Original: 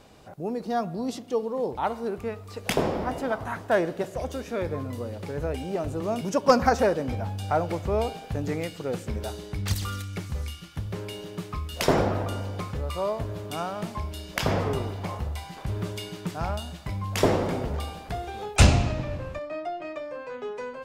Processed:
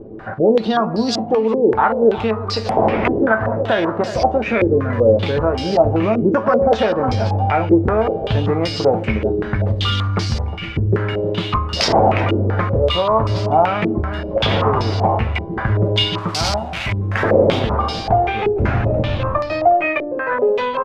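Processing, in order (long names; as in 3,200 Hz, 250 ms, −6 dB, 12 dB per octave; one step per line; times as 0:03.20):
0:16.18–0:17.31: spike at every zero crossing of −18 dBFS
downward compressor 3 to 1, threshold −31 dBFS, peak gain reduction 15 dB
tuned comb filter 110 Hz, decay 0.19 s, harmonics all, mix 80%
on a send: single-tap delay 359 ms −13.5 dB
on the sum: boost into a limiter +28 dB
low-pass on a step sequencer 5.2 Hz 380–4,900 Hz
level −6.5 dB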